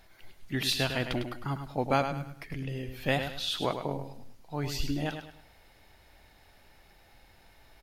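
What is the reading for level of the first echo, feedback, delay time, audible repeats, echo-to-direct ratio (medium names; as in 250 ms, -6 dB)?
-8.0 dB, 34%, 103 ms, 3, -7.5 dB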